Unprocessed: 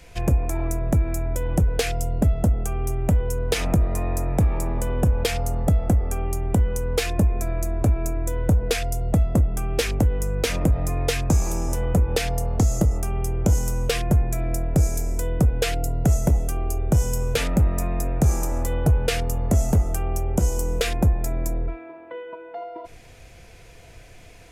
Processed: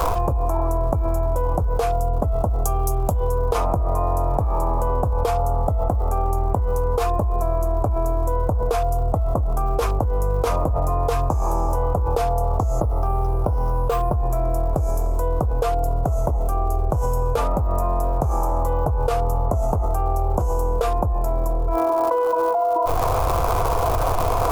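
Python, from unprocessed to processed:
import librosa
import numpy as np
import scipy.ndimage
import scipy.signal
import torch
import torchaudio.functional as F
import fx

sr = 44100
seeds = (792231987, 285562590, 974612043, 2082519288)

y = fx.high_shelf_res(x, sr, hz=2800.0, db=12.5, q=1.5, at=(2.65, 3.3))
y = fx.resample_bad(y, sr, factor=4, down='filtered', up='hold', at=(12.81, 14.15))
y = fx.dmg_crackle(y, sr, seeds[0], per_s=240.0, level_db=-33.0)
y = fx.curve_eq(y, sr, hz=(100.0, 190.0, 1100.0, 1800.0, 8600.0, 13000.0), db=(0, -9, 12, -15, -12, -7))
y = fx.env_flatten(y, sr, amount_pct=100)
y = y * librosa.db_to_amplitude(-6.0)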